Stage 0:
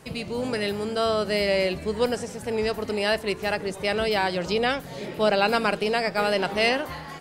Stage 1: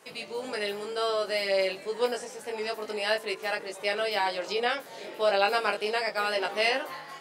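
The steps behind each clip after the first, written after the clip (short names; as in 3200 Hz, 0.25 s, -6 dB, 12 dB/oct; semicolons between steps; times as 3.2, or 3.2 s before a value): HPF 430 Hz 12 dB/oct; chorus 0.31 Hz, delay 18.5 ms, depth 2.3 ms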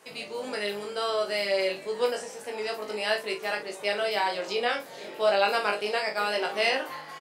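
doubler 39 ms -8 dB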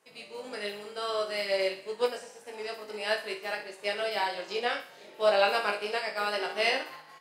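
thinning echo 63 ms, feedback 58%, high-pass 610 Hz, level -7.5 dB; upward expander 1.5:1, over -45 dBFS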